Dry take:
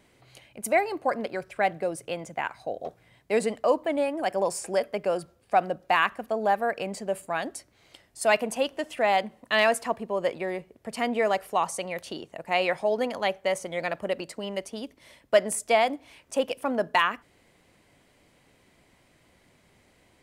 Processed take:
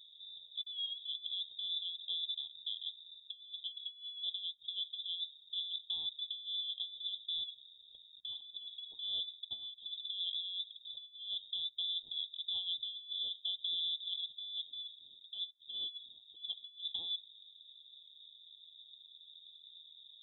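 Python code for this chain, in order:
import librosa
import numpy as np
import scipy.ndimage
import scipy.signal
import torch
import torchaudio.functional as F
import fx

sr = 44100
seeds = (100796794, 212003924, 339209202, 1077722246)

y = scipy.signal.sosfilt(scipy.signal.cheby2(4, 60, [790.0, 2400.0], 'bandstop', fs=sr, output='sos'), x)
y = fx.low_shelf(y, sr, hz=150.0, db=6.5)
y = fx.over_compress(y, sr, threshold_db=-40.0, ratio=-0.5)
y = fx.freq_invert(y, sr, carrier_hz=3700)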